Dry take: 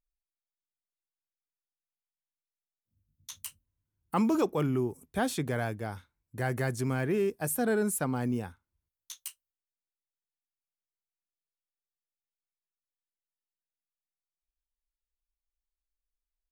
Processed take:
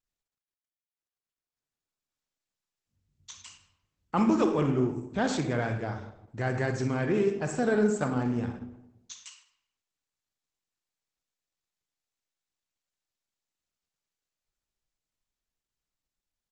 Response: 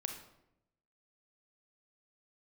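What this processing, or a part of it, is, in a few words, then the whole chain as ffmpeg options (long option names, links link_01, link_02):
speakerphone in a meeting room: -filter_complex "[1:a]atrim=start_sample=2205[link_01];[0:a][link_01]afir=irnorm=-1:irlink=0,asplit=2[link_02][link_03];[link_03]adelay=110,highpass=300,lowpass=3400,asoftclip=type=hard:threshold=-24.5dB,volume=-21dB[link_04];[link_02][link_04]amix=inputs=2:normalize=0,dynaudnorm=framelen=420:gausssize=11:maxgain=10dB,volume=-6.5dB" -ar 48000 -c:a libopus -b:a 12k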